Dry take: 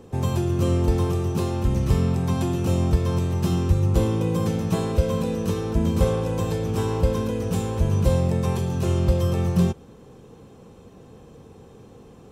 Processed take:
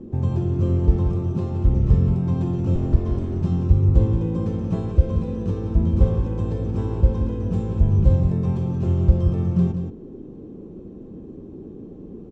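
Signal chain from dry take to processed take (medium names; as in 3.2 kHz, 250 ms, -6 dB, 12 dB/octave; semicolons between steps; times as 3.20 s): 2.75–3.41 s: comb filter that takes the minimum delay 2.8 ms; low-pass 8 kHz 24 dB/octave; tilt EQ -3.5 dB/octave; band noise 170–410 Hz -31 dBFS; on a send: delay 178 ms -8.5 dB; on the sum: trim -8.5 dB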